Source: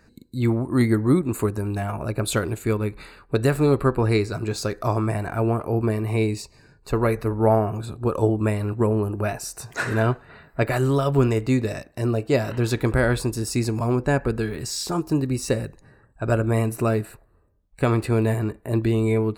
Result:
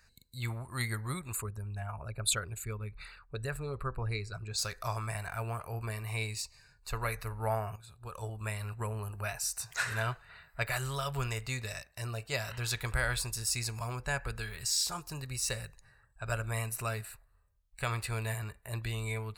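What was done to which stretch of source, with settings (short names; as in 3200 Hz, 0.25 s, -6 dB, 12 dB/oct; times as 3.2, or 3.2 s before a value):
1.35–4.59 formant sharpening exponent 1.5
7.76–8.66 fade in, from -13 dB
whole clip: passive tone stack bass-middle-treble 10-0-10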